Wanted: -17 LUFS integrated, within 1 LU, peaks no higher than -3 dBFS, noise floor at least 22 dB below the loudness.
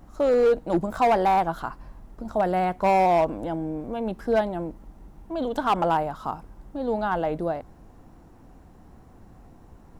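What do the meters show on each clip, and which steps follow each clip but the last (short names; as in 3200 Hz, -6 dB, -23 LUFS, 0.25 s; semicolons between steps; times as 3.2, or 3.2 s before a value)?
clipped 1.5%; flat tops at -15.0 dBFS; loudness -24.5 LUFS; peak -15.0 dBFS; loudness target -17.0 LUFS
-> clip repair -15 dBFS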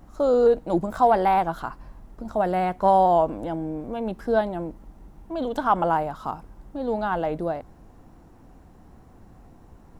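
clipped 0.0%; loudness -23.5 LUFS; peak -7.5 dBFS; loudness target -17.0 LUFS
-> gain +6.5 dB; limiter -3 dBFS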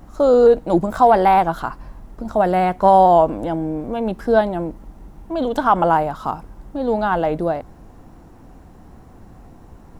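loudness -17.5 LUFS; peak -3.0 dBFS; noise floor -44 dBFS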